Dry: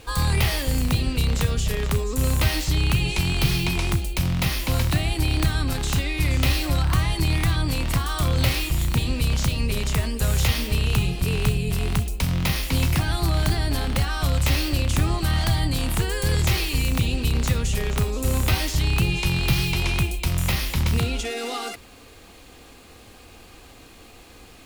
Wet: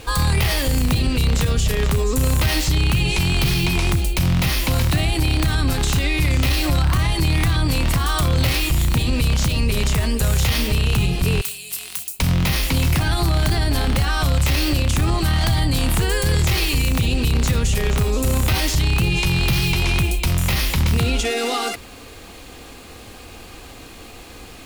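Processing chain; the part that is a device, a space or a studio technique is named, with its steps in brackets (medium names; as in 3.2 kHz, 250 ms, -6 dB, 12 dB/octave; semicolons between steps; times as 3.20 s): 11.41–12.20 s: differentiator; soft clipper into limiter (saturation -12 dBFS, distortion -23 dB; peak limiter -18.5 dBFS, peak gain reduction 5.5 dB); trim +7.5 dB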